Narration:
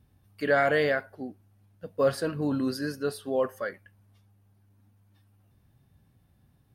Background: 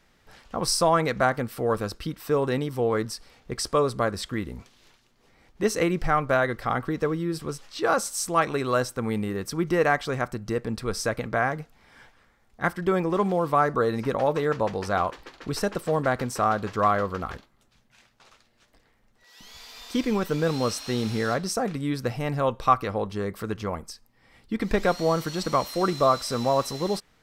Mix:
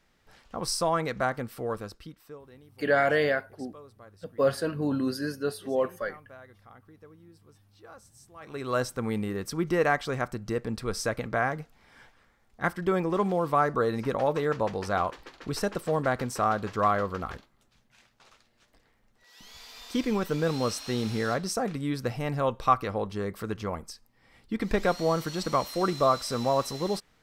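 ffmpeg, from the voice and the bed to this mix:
-filter_complex "[0:a]adelay=2400,volume=1[s0];[1:a]volume=8.41,afade=t=out:st=1.52:d=0.89:silence=0.0891251,afade=t=in:st=8.4:d=0.42:silence=0.0630957[s1];[s0][s1]amix=inputs=2:normalize=0"

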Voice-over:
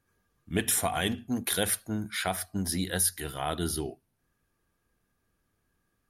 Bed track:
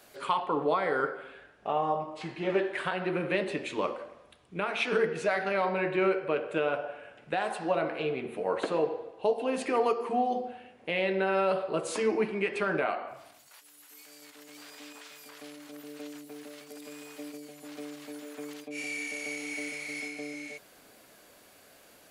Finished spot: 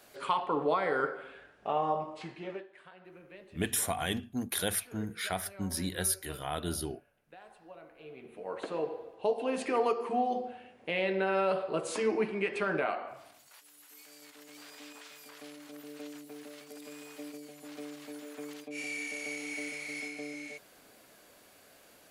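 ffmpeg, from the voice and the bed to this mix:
-filter_complex "[0:a]adelay=3050,volume=0.631[s0];[1:a]volume=8.91,afade=t=out:st=2.05:d=0.61:silence=0.0891251,afade=t=in:st=7.96:d=1.43:silence=0.0944061[s1];[s0][s1]amix=inputs=2:normalize=0"

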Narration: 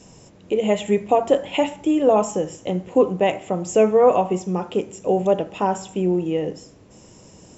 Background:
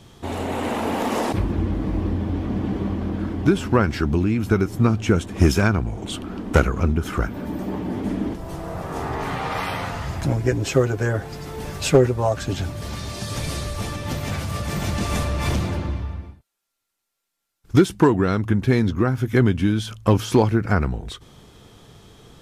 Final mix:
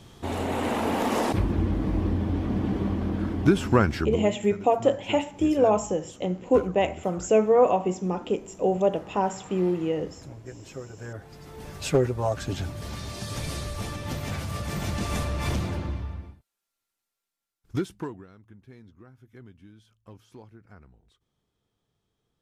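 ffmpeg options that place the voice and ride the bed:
-filter_complex "[0:a]adelay=3550,volume=0.631[s0];[1:a]volume=5.01,afade=t=out:st=3.84:d=0.52:silence=0.112202,afade=t=in:st=10.89:d=1.45:silence=0.158489,afade=t=out:st=16.91:d=1.36:silence=0.0501187[s1];[s0][s1]amix=inputs=2:normalize=0"

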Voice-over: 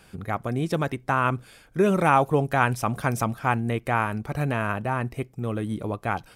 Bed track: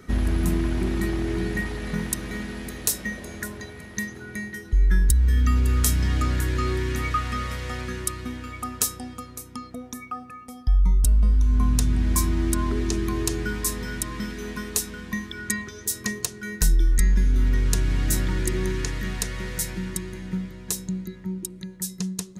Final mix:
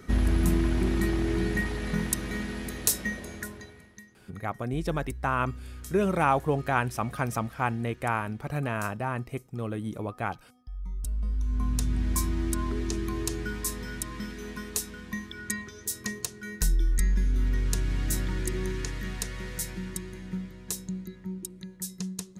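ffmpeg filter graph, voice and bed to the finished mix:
-filter_complex "[0:a]adelay=4150,volume=0.596[s0];[1:a]volume=5.62,afade=t=out:st=3.07:d=0.95:silence=0.0944061,afade=t=in:st=10.71:d=1.25:silence=0.158489[s1];[s0][s1]amix=inputs=2:normalize=0"

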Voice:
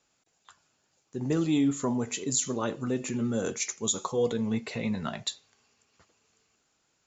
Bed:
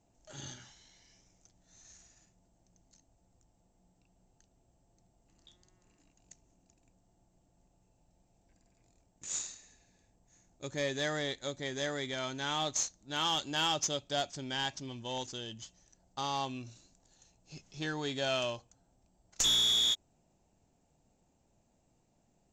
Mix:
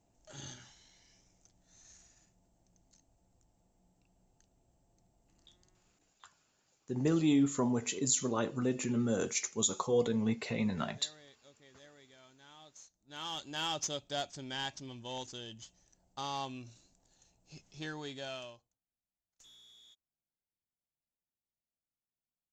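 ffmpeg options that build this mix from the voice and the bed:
-filter_complex "[0:a]adelay=5750,volume=0.75[s0];[1:a]volume=7.94,afade=t=out:st=5.67:d=0.56:silence=0.0841395,afade=t=in:st=12.82:d=1.01:silence=0.105925,afade=t=out:st=17.69:d=1.1:silence=0.0354813[s1];[s0][s1]amix=inputs=2:normalize=0"

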